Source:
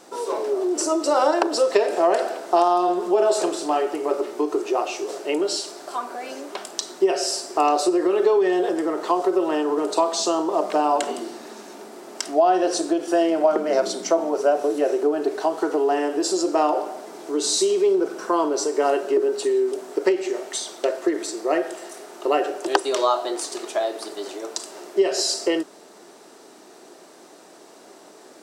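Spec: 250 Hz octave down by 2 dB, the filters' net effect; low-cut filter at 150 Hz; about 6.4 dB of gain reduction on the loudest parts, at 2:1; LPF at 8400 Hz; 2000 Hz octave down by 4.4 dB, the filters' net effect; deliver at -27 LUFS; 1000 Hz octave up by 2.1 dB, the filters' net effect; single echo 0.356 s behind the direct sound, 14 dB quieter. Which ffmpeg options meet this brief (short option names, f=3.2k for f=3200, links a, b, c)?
-af "highpass=150,lowpass=8.4k,equalizer=f=250:t=o:g=-3.5,equalizer=f=1k:t=o:g=5,equalizer=f=2k:t=o:g=-8,acompressor=threshold=-24dB:ratio=2,aecho=1:1:356:0.2,volume=-0.5dB"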